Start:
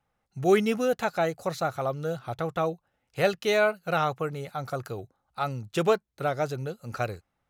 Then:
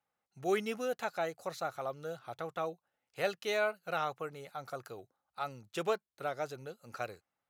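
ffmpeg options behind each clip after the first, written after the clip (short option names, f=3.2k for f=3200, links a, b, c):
-af "highpass=f=390:p=1,volume=-7.5dB"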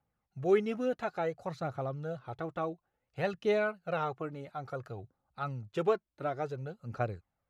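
-af "aemphasis=mode=reproduction:type=riaa,aphaser=in_gain=1:out_gain=1:delay=3.6:decay=0.42:speed=0.57:type=triangular"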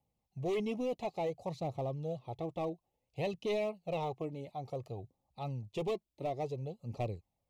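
-filter_complex "[0:a]acrossover=split=1200[a][b];[a]asoftclip=type=hard:threshold=-31dB[c];[c][b]amix=inputs=2:normalize=0,asuperstop=centerf=1500:order=4:qfactor=1.1"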